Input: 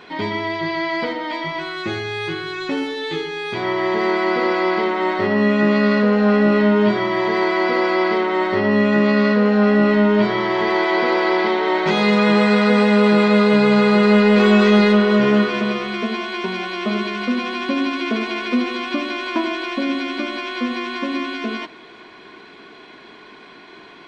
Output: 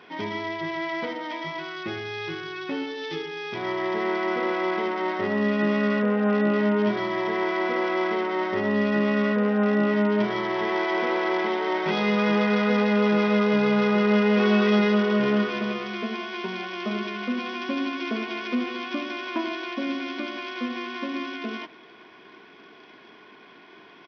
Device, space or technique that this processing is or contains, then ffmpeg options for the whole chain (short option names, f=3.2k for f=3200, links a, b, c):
Bluetooth headset: -af "highpass=100,aresample=8000,aresample=44100,volume=-7dB" -ar 44100 -c:a sbc -b:a 64k